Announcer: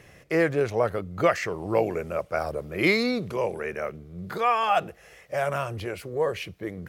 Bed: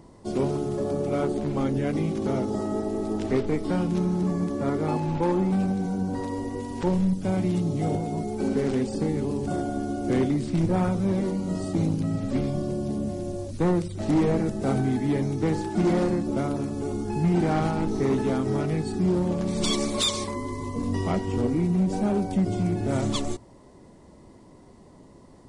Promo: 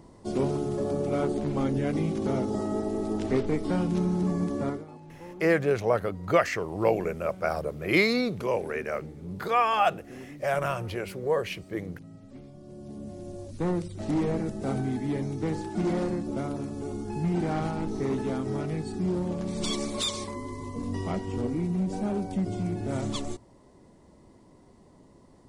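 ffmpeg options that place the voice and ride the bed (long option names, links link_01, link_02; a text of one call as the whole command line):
ffmpeg -i stem1.wav -i stem2.wav -filter_complex "[0:a]adelay=5100,volume=-0.5dB[link_01];[1:a]volume=14dB,afade=type=out:start_time=4.61:duration=0.24:silence=0.112202,afade=type=in:start_time=12.59:duration=1.12:silence=0.16788[link_02];[link_01][link_02]amix=inputs=2:normalize=0" out.wav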